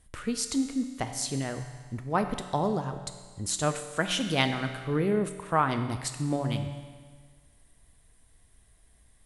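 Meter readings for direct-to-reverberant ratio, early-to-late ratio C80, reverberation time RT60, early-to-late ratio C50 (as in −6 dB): 7.0 dB, 10.0 dB, 1.6 s, 9.0 dB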